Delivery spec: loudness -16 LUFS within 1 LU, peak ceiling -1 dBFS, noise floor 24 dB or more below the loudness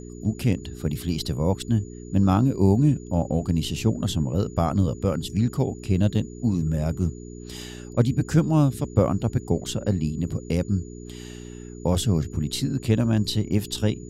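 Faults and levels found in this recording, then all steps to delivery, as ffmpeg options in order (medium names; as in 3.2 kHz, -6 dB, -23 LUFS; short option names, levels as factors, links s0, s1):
hum 60 Hz; highest harmonic 420 Hz; hum level -38 dBFS; steady tone 6.9 kHz; tone level -51 dBFS; loudness -24.5 LUFS; peak level -5.5 dBFS; loudness target -16.0 LUFS
-> -af "bandreject=f=60:t=h:w=4,bandreject=f=120:t=h:w=4,bandreject=f=180:t=h:w=4,bandreject=f=240:t=h:w=4,bandreject=f=300:t=h:w=4,bandreject=f=360:t=h:w=4,bandreject=f=420:t=h:w=4"
-af "bandreject=f=6900:w=30"
-af "volume=2.66,alimiter=limit=0.891:level=0:latency=1"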